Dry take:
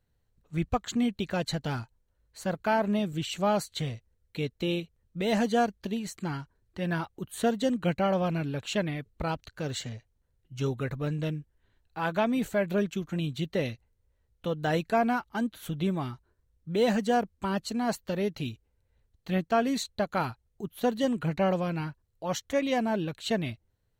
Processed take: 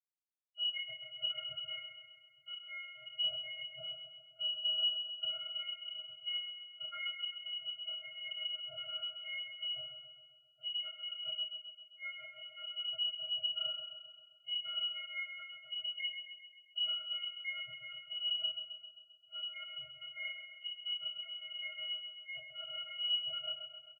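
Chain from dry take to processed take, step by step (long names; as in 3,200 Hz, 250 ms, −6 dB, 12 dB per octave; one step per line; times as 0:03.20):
spectral dynamics exaggerated over time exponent 2
high-pass filter 210 Hz 24 dB per octave
reversed playback
downward compressor 10 to 1, threshold −44 dBFS, peak gain reduction 21 dB
reversed playback
channel vocoder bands 16, square 382 Hz
repeating echo 132 ms, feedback 58%, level −8 dB
feedback delay network reverb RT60 0.32 s, low-frequency decay 0.85×, high-frequency decay 0.9×, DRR −8.5 dB
voice inversion scrambler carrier 3,300 Hz
level +7.5 dB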